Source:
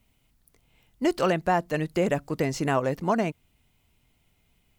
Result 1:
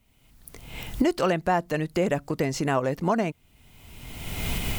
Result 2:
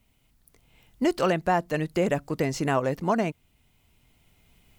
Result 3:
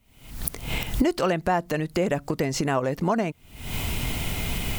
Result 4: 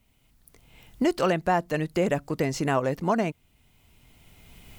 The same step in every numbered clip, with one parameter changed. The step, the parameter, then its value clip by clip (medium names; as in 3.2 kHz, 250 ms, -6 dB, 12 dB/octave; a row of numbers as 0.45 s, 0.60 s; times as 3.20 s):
recorder AGC, rising by: 33 dB/s, 5.2 dB/s, 85 dB/s, 13 dB/s